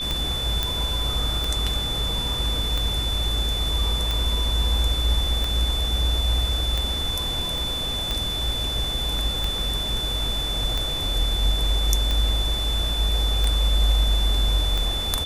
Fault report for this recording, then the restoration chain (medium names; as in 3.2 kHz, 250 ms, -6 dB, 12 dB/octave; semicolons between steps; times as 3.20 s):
tick 45 rpm -11 dBFS
whine 3.5 kHz -26 dBFS
0.63 s: pop -8 dBFS
7.58 s: pop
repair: de-click; band-stop 3.5 kHz, Q 30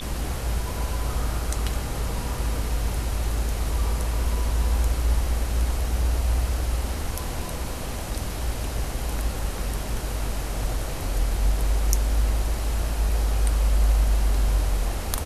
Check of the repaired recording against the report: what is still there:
7.58 s: pop